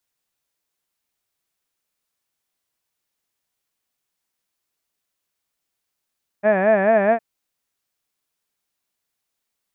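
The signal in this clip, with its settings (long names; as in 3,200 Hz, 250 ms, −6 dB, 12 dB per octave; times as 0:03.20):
vowel by formant synthesis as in had, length 0.76 s, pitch 198 Hz, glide +1.5 semitones, vibrato 4.6 Hz, vibrato depth 1.45 semitones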